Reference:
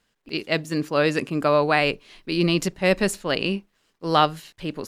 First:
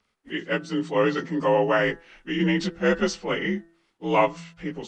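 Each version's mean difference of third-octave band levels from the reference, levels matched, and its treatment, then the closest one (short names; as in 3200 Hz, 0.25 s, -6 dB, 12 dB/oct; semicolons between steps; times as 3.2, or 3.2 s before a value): 6.5 dB: inharmonic rescaling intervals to 86%; de-hum 167.3 Hz, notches 11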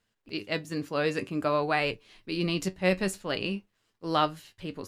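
1.0 dB: bell 99 Hz +7 dB 0.68 oct; flange 0.52 Hz, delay 8.8 ms, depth 2.2 ms, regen +59%; gain -3 dB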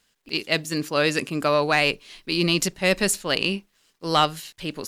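3.5 dB: high shelf 2500 Hz +10.5 dB; soft clip -4.5 dBFS, distortion -21 dB; gain -2 dB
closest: second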